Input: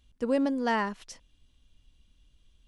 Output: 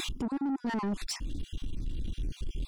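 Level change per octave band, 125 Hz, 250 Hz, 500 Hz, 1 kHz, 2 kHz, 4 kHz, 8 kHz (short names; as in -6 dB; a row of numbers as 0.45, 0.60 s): n/a, -2.0 dB, -11.5 dB, -7.5 dB, -7.5 dB, +5.0 dB, +8.0 dB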